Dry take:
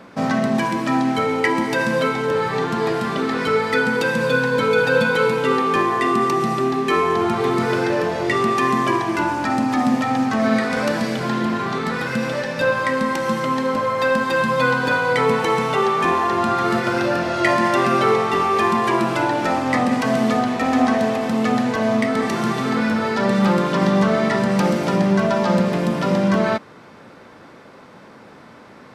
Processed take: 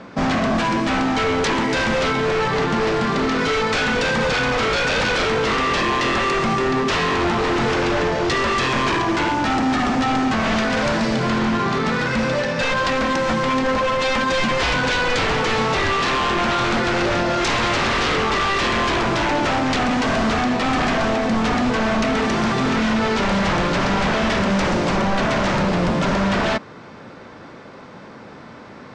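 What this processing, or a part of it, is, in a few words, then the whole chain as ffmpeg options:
synthesiser wavefolder: -af "aeval=exprs='0.119*(abs(mod(val(0)/0.119+3,4)-2)-1)':c=same,lowpass=f=7.2k:w=0.5412,lowpass=f=7.2k:w=1.3066,lowshelf=f=120:g=5,volume=3.5dB"

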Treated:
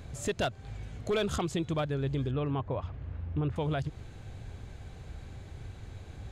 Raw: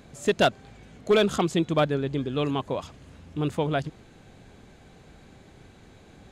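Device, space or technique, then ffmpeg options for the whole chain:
car stereo with a boomy subwoofer: -filter_complex "[0:a]lowshelf=f=140:t=q:w=1.5:g=10,alimiter=limit=-22dB:level=0:latency=1:release=249,asettb=1/sr,asplit=3[a][b][c];[a]atrim=end=2.314[d];[b]atrim=start=2.31:end=3.56,asetpts=PTS-STARTPTS,afade=t=in:d=0.004:c=qsin,afade=t=out:st=1.246:d=0.004:c=qsin,lowpass=2k[e];[c]atrim=start=3.556[f];[d][e]acrossfade=d=0.004:c1=hsin:c2=qsin[g];[g][f]acrossfade=d=0.004:c1=qsin:c2=hsin"

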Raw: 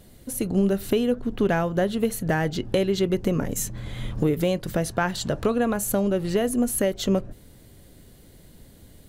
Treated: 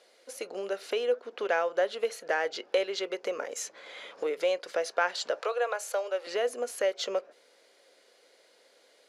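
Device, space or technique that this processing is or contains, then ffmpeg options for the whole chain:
phone speaker on a table: -filter_complex "[0:a]highpass=f=480:w=0.5412,highpass=f=480:w=1.3066,equalizer=f=500:t=q:w=4:g=6,equalizer=f=1.4k:t=q:w=4:g=4,equalizer=f=2.3k:t=q:w=4:g=5,equalizer=f=4.9k:t=q:w=4:g=5,equalizer=f=8.3k:t=q:w=4:g=-9,lowpass=f=8.8k:w=0.5412,lowpass=f=8.8k:w=1.3066,asettb=1/sr,asplit=3[a][b][c];[a]atrim=end=5.404[d];[b]atrim=start=5.4:end=6.27,asetpts=PTS-STARTPTS,afade=t=in:d=0.004:c=qsin,afade=t=out:st=0.866:d=0.004:c=qsin,highpass=f=450:w=0.5412,highpass=f=450:w=1.3066[e];[c]atrim=start=6.266[f];[d][e]acrossfade=d=0.004:c1=hsin:c2=qsin[g];[g][f]acrossfade=d=0.004:c1=qsin:c2=hsin,volume=-4dB"

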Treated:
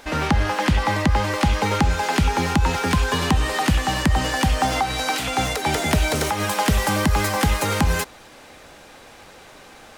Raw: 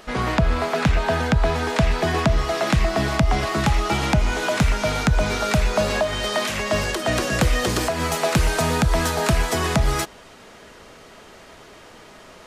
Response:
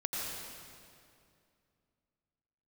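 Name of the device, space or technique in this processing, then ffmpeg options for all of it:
nightcore: -af "asetrate=55125,aresample=44100"

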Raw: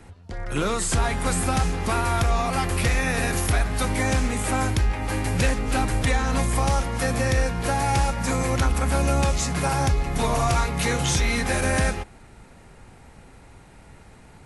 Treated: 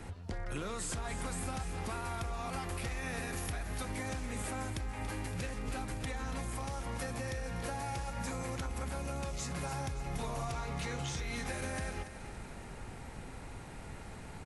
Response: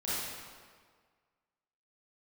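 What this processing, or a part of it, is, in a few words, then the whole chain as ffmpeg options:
serial compression, leveller first: -filter_complex "[0:a]acompressor=threshold=-23dB:ratio=6,acompressor=threshold=-38dB:ratio=5,asettb=1/sr,asplit=3[a][b][c];[a]atrim=end=10.524[d];[b]atrim=start=10.52:end=11.19,asetpts=PTS-STARTPTS,afade=t=in:d=0.004:c=qsin,afade=t=out:st=0.666:d=0.004:c=qsin,lowpass=7.9k[e];[c]atrim=start=11.186[f];[d][e]acrossfade=d=0.004:c1=hsin:c2=qsin[g];[g][f]acrossfade=d=0.004:c1=qsin:c2=hsin,aecho=1:1:283|566|849|1132|1415|1698:0.266|0.138|0.0719|0.0374|0.0195|0.0101,volume=1dB"

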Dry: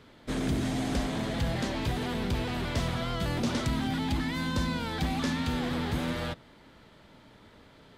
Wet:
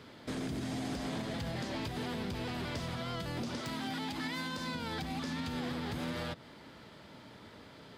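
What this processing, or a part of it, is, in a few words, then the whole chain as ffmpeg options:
broadcast voice chain: -filter_complex "[0:a]asettb=1/sr,asplit=3[a][b][c];[a]atrim=end=3.614[d];[b]atrim=start=3.61:end=4.75,asetpts=PTS-STARTPTS,afade=t=in:d=0.004:c=qsin,afade=t=out:st=1.136:d=0.004:c=qsin,highpass=f=340:p=1[e];[c]atrim=start=4.746[f];[d][e]acrossfade=d=0.004:c1=hsin:c2=qsin[g];[g][f]acrossfade=d=0.004:c1=qsin:c2=hsin,highpass=83,deesser=0.8,acompressor=threshold=-35dB:ratio=4,equalizer=f=4.9k:t=o:w=0.22:g=5,alimiter=level_in=7dB:limit=-24dB:level=0:latency=1:release=158,volume=-7dB,volume=2.5dB"

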